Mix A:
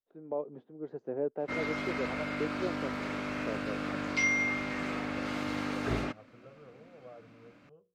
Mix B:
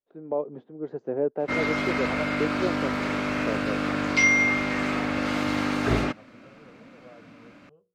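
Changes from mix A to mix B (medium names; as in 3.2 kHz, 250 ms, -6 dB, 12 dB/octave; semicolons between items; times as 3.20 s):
first voice +7.0 dB; background +8.5 dB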